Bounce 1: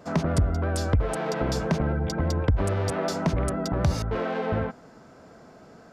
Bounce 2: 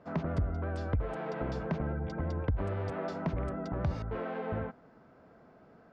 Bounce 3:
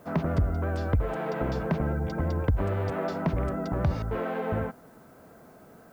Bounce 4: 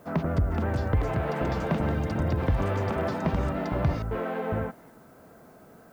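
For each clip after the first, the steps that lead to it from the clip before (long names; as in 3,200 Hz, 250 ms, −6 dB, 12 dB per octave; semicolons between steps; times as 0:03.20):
low-pass filter 2,600 Hz 12 dB per octave; level −8.5 dB
background noise blue −72 dBFS; level +6 dB
delay with pitch and tempo change per echo 464 ms, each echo +5 semitones, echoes 3, each echo −6 dB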